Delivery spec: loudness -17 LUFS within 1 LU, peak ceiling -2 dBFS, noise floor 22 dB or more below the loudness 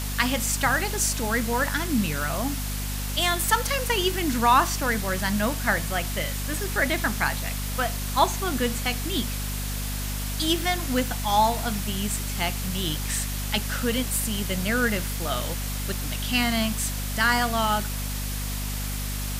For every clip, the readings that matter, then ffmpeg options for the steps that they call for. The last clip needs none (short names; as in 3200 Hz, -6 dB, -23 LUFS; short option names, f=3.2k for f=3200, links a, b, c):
hum 50 Hz; harmonics up to 250 Hz; hum level -28 dBFS; noise floor -30 dBFS; noise floor target -48 dBFS; loudness -25.5 LUFS; peak -6.0 dBFS; loudness target -17.0 LUFS
-> -af "bandreject=f=50:t=h:w=4,bandreject=f=100:t=h:w=4,bandreject=f=150:t=h:w=4,bandreject=f=200:t=h:w=4,bandreject=f=250:t=h:w=4"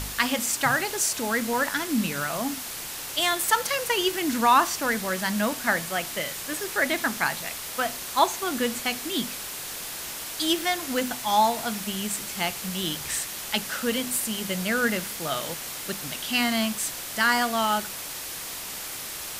hum none; noise floor -36 dBFS; noise floor target -48 dBFS
-> -af "afftdn=nr=12:nf=-36"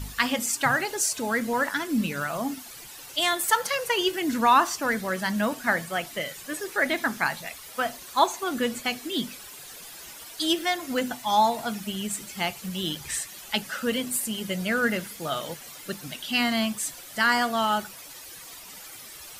noise floor -44 dBFS; noise floor target -49 dBFS
-> -af "afftdn=nr=6:nf=-44"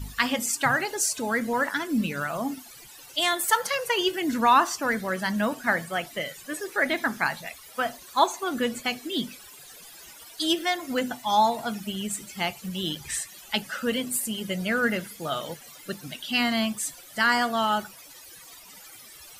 noise floor -48 dBFS; noise floor target -49 dBFS
-> -af "afftdn=nr=6:nf=-48"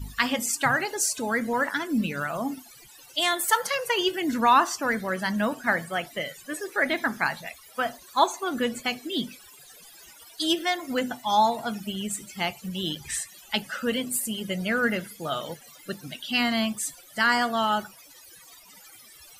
noise floor -51 dBFS; loudness -26.5 LUFS; peak -6.5 dBFS; loudness target -17.0 LUFS
-> -af "volume=9.5dB,alimiter=limit=-2dB:level=0:latency=1"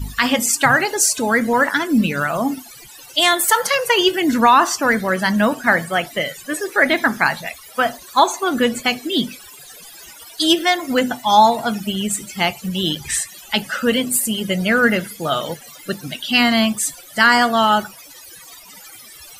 loudness -17.5 LUFS; peak -2.0 dBFS; noise floor -41 dBFS